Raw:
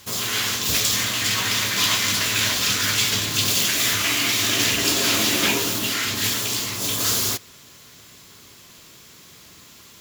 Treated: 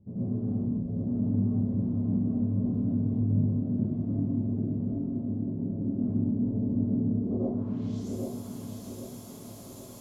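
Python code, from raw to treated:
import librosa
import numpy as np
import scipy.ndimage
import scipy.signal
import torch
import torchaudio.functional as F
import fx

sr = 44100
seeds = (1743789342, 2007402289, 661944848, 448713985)

y = fx.curve_eq(x, sr, hz=(330.0, 630.0, 1800.0, 14000.0), db=(0, 5, -20, -8))
y = fx.over_compress(y, sr, threshold_db=-32.0, ratio=-1.0)
y = fx.filter_sweep_lowpass(y, sr, from_hz=210.0, to_hz=11000.0, start_s=7.17, end_s=8.07, q=2.2)
y = fx.echo_feedback(y, sr, ms=787, feedback_pct=42, wet_db=-4.0)
y = fx.rev_plate(y, sr, seeds[0], rt60_s=0.57, hf_ratio=1.0, predelay_ms=80, drr_db=-7.5)
y = y * librosa.db_to_amplitude(-7.0)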